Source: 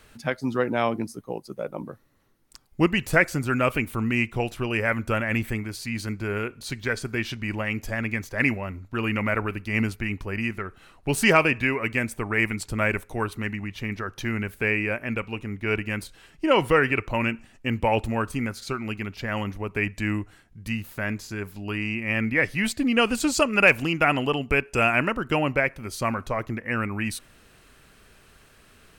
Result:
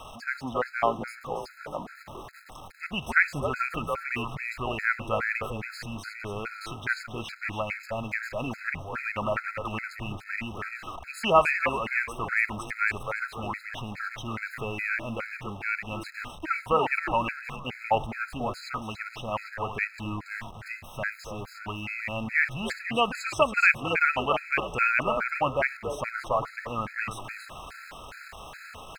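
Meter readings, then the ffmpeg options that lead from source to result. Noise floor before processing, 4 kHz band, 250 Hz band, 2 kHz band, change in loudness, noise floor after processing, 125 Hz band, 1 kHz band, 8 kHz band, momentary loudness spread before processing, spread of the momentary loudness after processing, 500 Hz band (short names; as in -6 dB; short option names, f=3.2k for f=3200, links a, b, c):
-55 dBFS, -4.5 dB, -10.5 dB, -2.5 dB, -4.0 dB, -47 dBFS, -9.0 dB, +0.5 dB, -10.0 dB, 11 LU, 15 LU, -4.5 dB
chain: -filter_complex "[0:a]aeval=exprs='val(0)+0.5*0.0224*sgn(val(0))':c=same,lowpass=f=1.6k:p=1,lowshelf=f=530:t=q:w=1.5:g=-10,asplit=2[a][b];[b]asplit=4[c][d][e][f];[c]adelay=279,afreqshift=-92,volume=-7dB[g];[d]adelay=558,afreqshift=-184,volume=-15.9dB[h];[e]adelay=837,afreqshift=-276,volume=-24.7dB[i];[f]adelay=1116,afreqshift=-368,volume=-33.6dB[j];[g][h][i][j]amix=inputs=4:normalize=0[k];[a][k]amix=inputs=2:normalize=0,afftfilt=real='re*gt(sin(2*PI*2.4*pts/sr)*(1-2*mod(floor(b*sr/1024/1300),2)),0)':imag='im*gt(sin(2*PI*2.4*pts/sr)*(1-2*mod(floor(b*sr/1024/1300),2)),0)':win_size=1024:overlap=0.75,volume=2dB"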